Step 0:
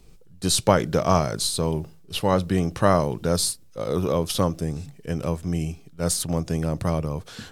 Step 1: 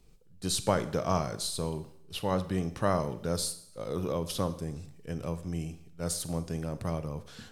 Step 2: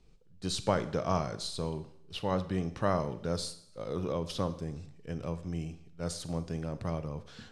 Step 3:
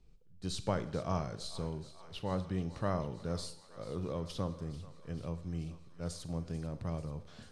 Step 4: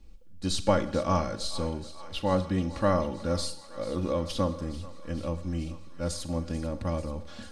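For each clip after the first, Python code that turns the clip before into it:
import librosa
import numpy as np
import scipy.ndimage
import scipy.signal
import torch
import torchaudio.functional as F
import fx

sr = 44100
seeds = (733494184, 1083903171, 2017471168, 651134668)

y1 = fx.rev_schroeder(x, sr, rt60_s=0.7, comb_ms=32, drr_db=12.5)
y1 = y1 * 10.0 ** (-9.0 / 20.0)
y2 = scipy.signal.sosfilt(scipy.signal.butter(2, 6000.0, 'lowpass', fs=sr, output='sos'), y1)
y2 = y2 * 10.0 ** (-1.5 / 20.0)
y3 = fx.low_shelf(y2, sr, hz=170.0, db=7.0)
y3 = fx.echo_thinned(y3, sr, ms=440, feedback_pct=79, hz=630.0, wet_db=-16.0)
y3 = y3 * 10.0 ** (-6.5 / 20.0)
y4 = y3 + 0.83 * np.pad(y3, (int(3.6 * sr / 1000.0), 0))[:len(y3)]
y4 = y4 * 10.0 ** (7.5 / 20.0)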